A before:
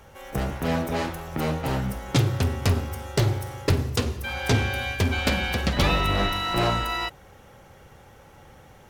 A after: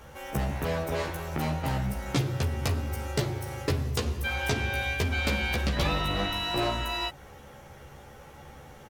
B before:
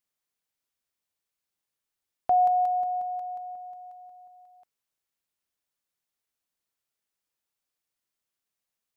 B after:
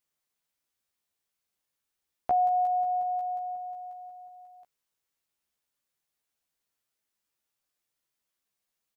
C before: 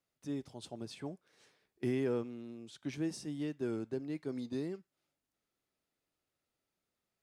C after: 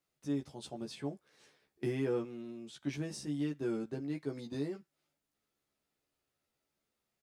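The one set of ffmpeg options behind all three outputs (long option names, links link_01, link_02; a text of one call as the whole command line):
ffmpeg -i in.wav -filter_complex "[0:a]acompressor=threshold=-31dB:ratio=2,asplit=2[link_01][link_02];[link_02]adelay=14,volume=-3dB[link_03];[link_01][link_03]amix=inputs=2:normalize=0" out.wav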